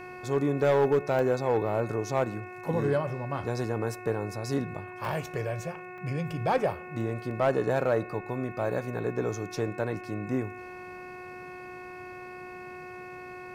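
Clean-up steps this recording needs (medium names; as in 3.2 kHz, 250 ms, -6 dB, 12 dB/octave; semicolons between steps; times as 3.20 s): clip repair -17 dBFS; de-hum 364.2 Hz, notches 7; band-stop 2.6 kHz, Q 30; interpolate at 1.19/5.05/5.98/7.31 s, 1.4 ms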